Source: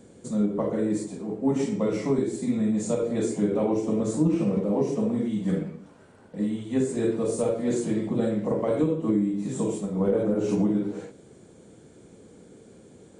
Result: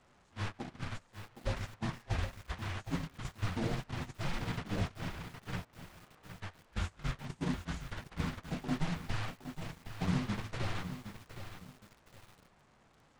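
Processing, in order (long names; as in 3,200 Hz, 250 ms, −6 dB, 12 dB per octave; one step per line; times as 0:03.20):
linear delta modulator 64 kbit/s, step −27 dBFS
noise gate −23 dBFS, range −25 dB
low-pass filter 1,500 Hz 12 dB per octave
first difference
frequency shifter −310 Hz
feedback echo at a low word length 765 ms, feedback 35%, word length 11 bits, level −9.5 dB
level +16 dB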